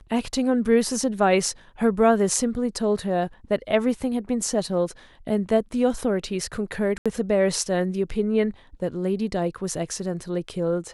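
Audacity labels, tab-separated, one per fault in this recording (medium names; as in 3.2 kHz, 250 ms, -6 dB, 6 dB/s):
6.980000	7.060000	dropout 76 ms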